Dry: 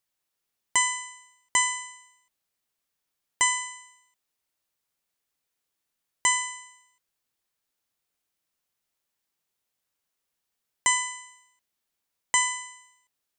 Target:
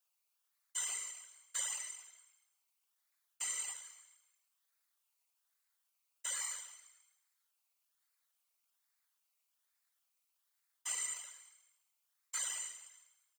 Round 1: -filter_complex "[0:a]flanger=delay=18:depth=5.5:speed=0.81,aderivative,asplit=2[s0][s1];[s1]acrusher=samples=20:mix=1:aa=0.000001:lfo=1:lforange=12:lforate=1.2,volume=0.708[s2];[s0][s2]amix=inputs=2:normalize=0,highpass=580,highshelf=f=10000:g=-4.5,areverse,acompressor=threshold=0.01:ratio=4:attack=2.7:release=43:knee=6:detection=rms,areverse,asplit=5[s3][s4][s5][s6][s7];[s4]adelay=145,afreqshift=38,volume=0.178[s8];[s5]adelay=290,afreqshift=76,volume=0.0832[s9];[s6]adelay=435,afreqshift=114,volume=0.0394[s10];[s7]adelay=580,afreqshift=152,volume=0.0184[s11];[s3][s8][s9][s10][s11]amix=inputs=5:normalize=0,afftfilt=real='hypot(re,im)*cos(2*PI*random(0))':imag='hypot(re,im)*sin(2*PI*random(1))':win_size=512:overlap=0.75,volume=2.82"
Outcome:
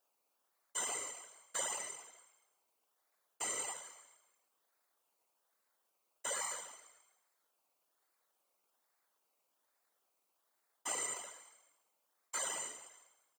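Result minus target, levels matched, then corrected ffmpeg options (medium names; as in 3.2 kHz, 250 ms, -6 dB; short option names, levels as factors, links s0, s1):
500 Hz band +17.5 dB
-filter_complex "[0:a]flanger=delay=18:depth=5.5:speed=0.81,aderivative,asplit=2[s0][s1];[s1]acrusher=samples=20:mix=1:aa=0.000001:lfo=1:lforange=12:lforate=1.2,volume=0.708[s2];[s0][s2]amix=inputs=2:normalize=0,highpass=1900,highshelf=f=10000:g=-4.5,areverse,acompressor=threshold=0.01:ratio=4:attack=2.7:release=43:knee=6:detection=rms,areverse,asplit=5[s3][s4][s5][s6][s7];[s4]adelay=145,afreqshift=38,volume=0.178[s8];[s5]adelay=290,afreqshift=76,volume=0.0832[s9];[s6]adelay=435,afreqshift=114,volume=0.0394[s10];[s7]adelay=580,afreqshift=152,volume=0.0184[s11];[s3][s8][s9][s10][s11]amix=inputs=5:normalize=0,afftfilt=real='hypot(re,im)*cos(2*PI*random(0))':imag='hypot(re,im)*sin(2*PI*random(1))':win_size=512:overlap=0.75,volume=2.82"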